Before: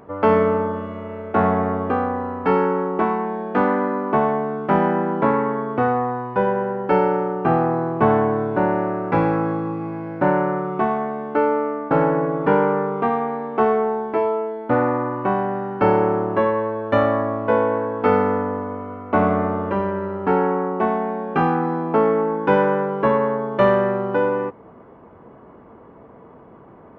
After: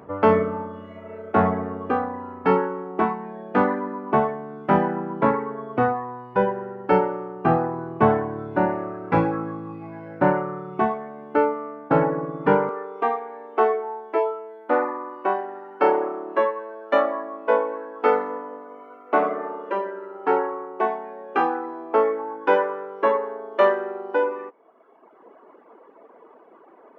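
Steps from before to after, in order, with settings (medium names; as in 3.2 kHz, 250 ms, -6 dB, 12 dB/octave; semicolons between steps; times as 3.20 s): reverb removal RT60 1.3 s; high-pass 54 Hz 24 dB/octave, from 12.69 s 320 Hz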